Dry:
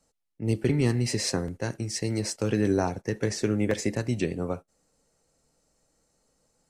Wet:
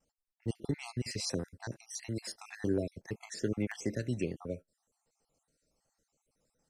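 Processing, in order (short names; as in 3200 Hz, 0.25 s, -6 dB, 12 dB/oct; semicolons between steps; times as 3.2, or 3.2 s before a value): random spectral dropouts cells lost 47%; vibrato 0.56 Hz 16 cents; gain -6.5 dB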